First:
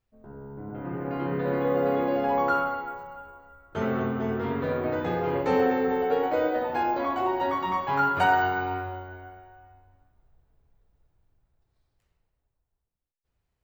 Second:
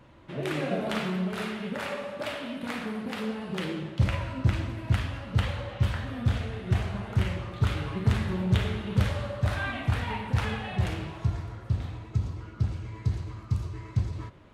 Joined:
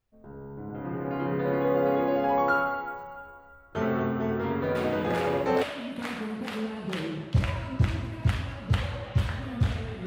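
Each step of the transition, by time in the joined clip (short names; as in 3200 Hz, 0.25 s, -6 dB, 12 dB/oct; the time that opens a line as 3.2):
first
5.19 switch to second from 1.84 s, crossfade 0.88 s logarithmic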